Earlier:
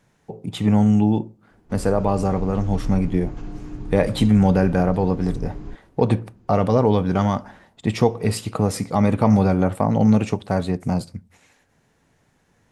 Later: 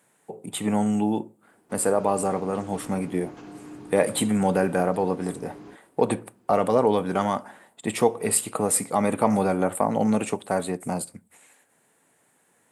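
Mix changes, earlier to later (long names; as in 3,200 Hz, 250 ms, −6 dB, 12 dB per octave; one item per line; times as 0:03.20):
speech: add high shelf with overshoot 7,000 Hz +7.5 dB, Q 3
master: add Bessel high-pass filter 330 Hz, order 2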